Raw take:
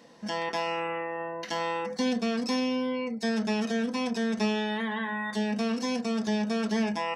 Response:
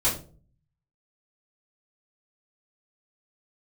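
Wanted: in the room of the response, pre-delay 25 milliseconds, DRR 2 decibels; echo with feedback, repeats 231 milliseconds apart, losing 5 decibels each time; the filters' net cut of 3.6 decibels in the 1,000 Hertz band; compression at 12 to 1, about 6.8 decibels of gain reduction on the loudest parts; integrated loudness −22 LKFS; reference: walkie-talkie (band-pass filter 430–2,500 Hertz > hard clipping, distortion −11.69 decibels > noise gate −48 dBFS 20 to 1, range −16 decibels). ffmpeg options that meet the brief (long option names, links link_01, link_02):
-filter_complex "[0:a]equalizer=frequency=1000:width_type=o:gain=-4,acompressor=threshold=-31dB:ratio=12,aecho=1:1:231|462|693|924|1155|1386|1617:0.562|0.315|0.176|0.0988|0.0553|0.031|0.0173,asplit=2[link_01][link_02];[1:a]atrim=start_sample=2205,adelay=25[link_03];[link_02][link_03]afir=irnorm=-1:irlink=0,volume=-13.5dB[link_04];[link_01][link_04]amix=inputs=2:normalize=0,highpass=430,lowpass=2500,asoftclip=type=hard:threshold=-32.5dB,agate=range=-16dB:threshold=-48dB:ratio=20,volume=15dB"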